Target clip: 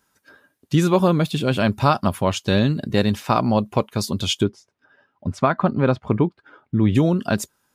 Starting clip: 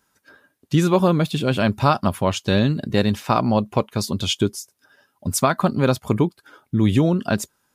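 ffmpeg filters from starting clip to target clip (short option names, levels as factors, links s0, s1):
-filter_complex "[0:a]asplit=3[s0][s1][s2];[s0]afade=t=out:st=4.43:d=0.02[s3];[s1]lowpass=2400,afade=t=in:st=4.43:d=0.02,afade=t=out:st=6.94:d=0.02[s4];[s2]afade=t=in:st=6.94:d=0.02[s5];[s3][s4][s5]amix=inputs=3:normalize=0"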